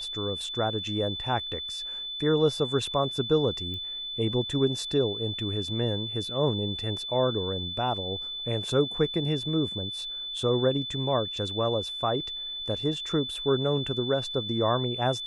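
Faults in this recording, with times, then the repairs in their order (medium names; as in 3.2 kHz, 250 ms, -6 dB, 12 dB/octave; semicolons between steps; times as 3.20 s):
whine 3.5 kHz -33 dBFS
3.74 s: pop -26 dBFS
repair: de-click; band-stop 3.5 kHz, Q 30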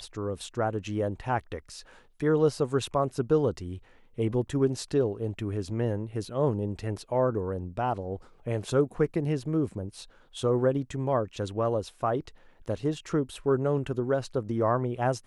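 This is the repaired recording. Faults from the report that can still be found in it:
3.74 s: pop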